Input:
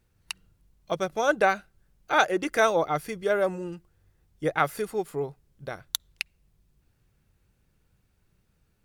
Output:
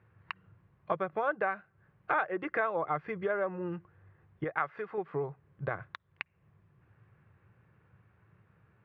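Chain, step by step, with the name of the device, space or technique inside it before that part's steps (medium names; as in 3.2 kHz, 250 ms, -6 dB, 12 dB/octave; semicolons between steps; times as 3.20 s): bass amplifier (compression 5:1, threshold -37 dBFS, peak gain reduction 19 dB; cabinet simulation 88–2300 Hz, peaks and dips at 110 Hz +6 dB, 250 Hz -8 dB, 1.1 kHz +7 dB, 1.7 kHz +4 dB); 4.44–4.98 s: bass shelf 400 Hz -8 dB; trim +6 dB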